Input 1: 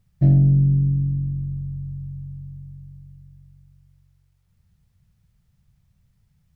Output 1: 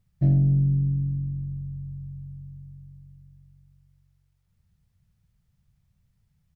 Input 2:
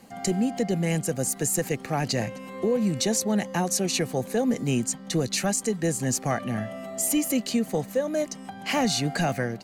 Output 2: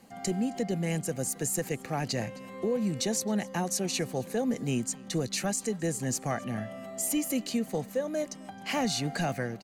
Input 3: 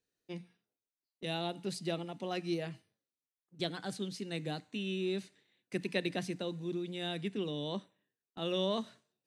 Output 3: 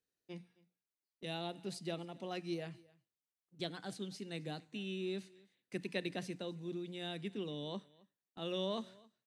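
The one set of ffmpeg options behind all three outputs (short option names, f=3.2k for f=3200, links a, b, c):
-af "aecho=1:1:266:0.0631,volume=-5dB"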